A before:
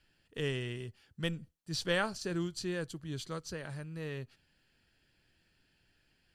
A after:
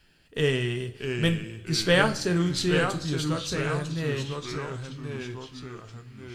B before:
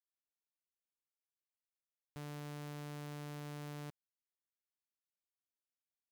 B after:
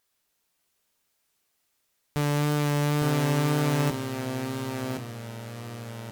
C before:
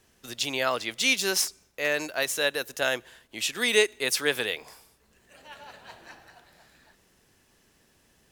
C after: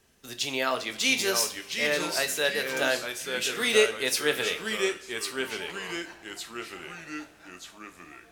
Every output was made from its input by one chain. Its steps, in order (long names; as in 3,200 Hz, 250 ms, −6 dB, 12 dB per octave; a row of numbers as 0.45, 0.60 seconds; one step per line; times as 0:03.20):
tape wow and flutter 17 cents
delay with pitch and tempo change per echo 594 ms, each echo −2 semitones, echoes 3, each echo −6 dB
coupled-rooms reverb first 0.32 s, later 2.8 s, from −22 dB, DRR 6.5 dB
loudness normalisation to −27 LKFS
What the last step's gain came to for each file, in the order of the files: +9.0, +20.0, −1.5 decibels